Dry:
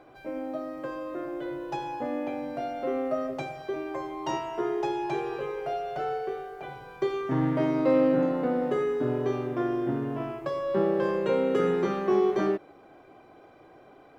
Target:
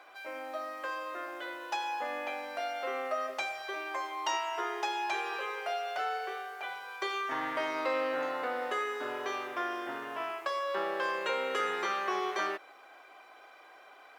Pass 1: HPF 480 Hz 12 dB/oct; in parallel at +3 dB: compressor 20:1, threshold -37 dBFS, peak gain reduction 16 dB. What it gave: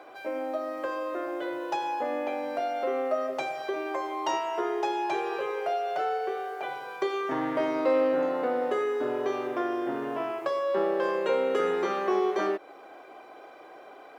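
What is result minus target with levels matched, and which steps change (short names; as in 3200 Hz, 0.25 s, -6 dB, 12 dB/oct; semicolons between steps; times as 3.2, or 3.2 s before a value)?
500 Hz band +4.0 dB
change: HPF 1200 Hz 12 dB/oct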